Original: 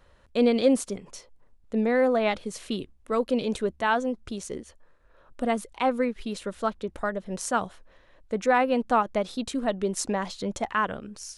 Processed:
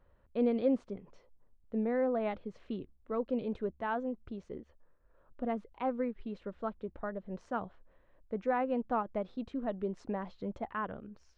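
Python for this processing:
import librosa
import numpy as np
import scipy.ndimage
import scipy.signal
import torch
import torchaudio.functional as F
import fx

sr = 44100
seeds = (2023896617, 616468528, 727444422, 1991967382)

y = fx.spacing_loss(x, sr, db_at_10k=43)
y = F.gain(torch.from_numpy(y), -6.5).numpy()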